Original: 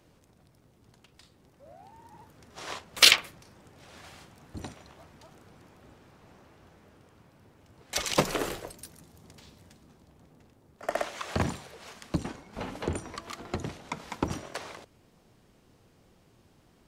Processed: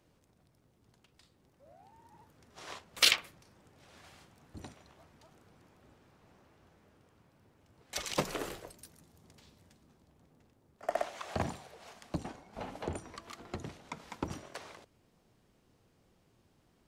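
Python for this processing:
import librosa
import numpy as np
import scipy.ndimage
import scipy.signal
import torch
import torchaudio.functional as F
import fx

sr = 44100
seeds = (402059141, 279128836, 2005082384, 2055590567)

y = fx.peak_eq(x, sr, hz=720.0, db=7.0, octaves=0.63, at=(10.83, 12.98))
y = y * 10.0 ** (-7.5 / 20.0)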